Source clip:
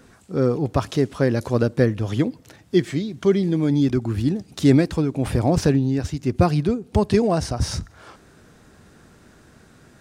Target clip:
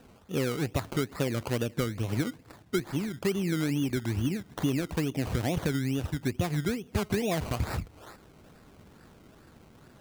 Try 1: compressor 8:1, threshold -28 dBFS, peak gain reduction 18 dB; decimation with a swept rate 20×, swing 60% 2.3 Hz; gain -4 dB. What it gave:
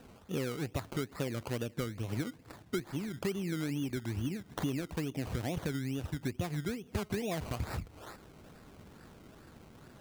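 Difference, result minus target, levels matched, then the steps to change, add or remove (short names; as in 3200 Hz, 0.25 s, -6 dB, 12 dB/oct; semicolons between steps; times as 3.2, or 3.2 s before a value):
compressor: peak gain reduction +6.5 dB
change: compressor 8:1, threshold -20.5 dBFS, peak gain reduction 11.5 dB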